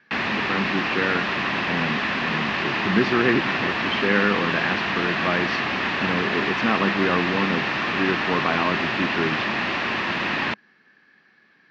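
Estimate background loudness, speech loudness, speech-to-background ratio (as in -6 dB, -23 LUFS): -23.5 LUFS, -26.0 LUFS, -2.5 dB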